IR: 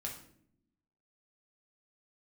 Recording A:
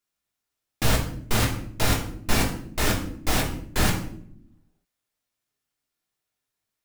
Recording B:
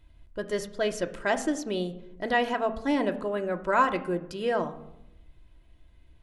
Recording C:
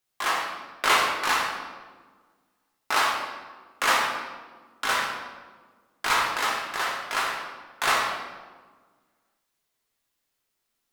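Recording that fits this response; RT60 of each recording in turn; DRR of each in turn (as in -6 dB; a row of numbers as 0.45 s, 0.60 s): A; 0.65 s, 0.85 s, 1.5 s; -1.5 dB, 5.5 dB, -3.5 dB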